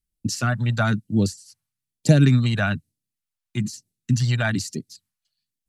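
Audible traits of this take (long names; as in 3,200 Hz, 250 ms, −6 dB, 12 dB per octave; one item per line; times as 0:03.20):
phaser sweep stages 2, 1.1 Hz, lowest notch 290–1,200 Hz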